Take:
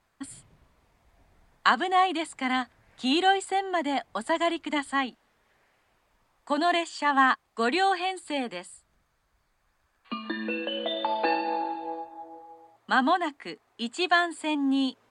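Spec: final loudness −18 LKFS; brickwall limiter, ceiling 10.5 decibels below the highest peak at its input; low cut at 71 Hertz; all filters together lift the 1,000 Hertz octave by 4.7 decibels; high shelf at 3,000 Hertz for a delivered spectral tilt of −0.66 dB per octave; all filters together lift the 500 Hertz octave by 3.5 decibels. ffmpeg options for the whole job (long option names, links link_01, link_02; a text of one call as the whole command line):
ffmpeg -i in.wav -af "highpass=71,equalizer=frequency=500:width_type=o:gain=3,equalizer=frequency=1000:width_type=o:gain=5.5,highshelf=frequency=3000:gain=-4,volume=9dB,alimiter=limit=-6dB:level=0:latency=1" out.wav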